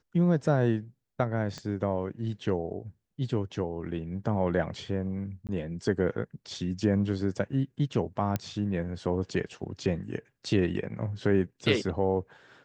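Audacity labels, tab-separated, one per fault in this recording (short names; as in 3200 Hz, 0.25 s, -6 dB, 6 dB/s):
1.580000	1.580000	pop -25 dBFS
5.470000	5.490000	gap 18 ms
8.360000	8.360000	pop -15 dBFS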